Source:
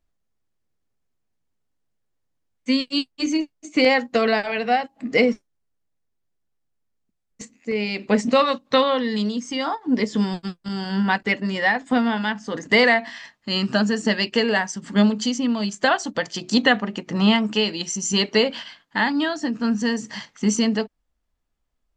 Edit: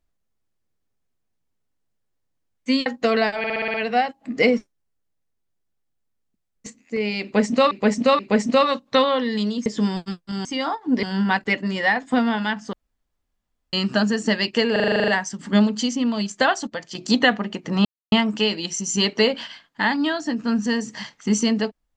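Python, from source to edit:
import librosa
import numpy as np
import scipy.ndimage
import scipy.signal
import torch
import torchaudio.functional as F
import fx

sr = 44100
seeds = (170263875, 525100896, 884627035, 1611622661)

y = fx.edit(x, sr, fx.cut(start_s=2.86, length_s=1.11),
    fx.stutter(start_s=4.49, slice_s=0.06, count=7),
    fx.repeat(start_s=7.98, length_s=0.48, count=3),
    fx.move(start_s=9.45, length_s=0.58, to_s=10.82),
    fx.room_tone_fill(start_s=12.52, length_s=1.0),
    fx.stutter(start_s=14.51, slice_s=0.04, count=10),
    fx.clip_gain(start_s=16.1, length_s=0.28, db=-6.5),
    fx.insert_silence(at_s=17.28, length_s=0.27), tone=tone)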